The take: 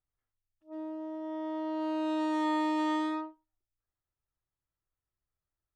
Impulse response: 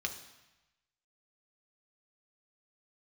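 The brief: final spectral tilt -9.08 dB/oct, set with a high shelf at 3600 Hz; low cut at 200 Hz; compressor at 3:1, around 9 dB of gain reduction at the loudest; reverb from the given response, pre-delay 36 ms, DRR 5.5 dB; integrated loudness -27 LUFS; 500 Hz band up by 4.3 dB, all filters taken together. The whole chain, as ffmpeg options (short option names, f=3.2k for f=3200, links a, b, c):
-filter_complex "[0:a]highpass=200,equalizer=f=500:t=o:g=7,highshelf=f=3.6k:g=-8,acompressor=threshold=-38dB:ratio=3,asplit=2[a][b];[1:a]atrim=start_sample=2205,adelay=36[c];[b][c]afir=irnorm=-1:irlink=0,volume=-8dB[d];[a][d]amix=inputs=2:normalize=0,volume=12dB"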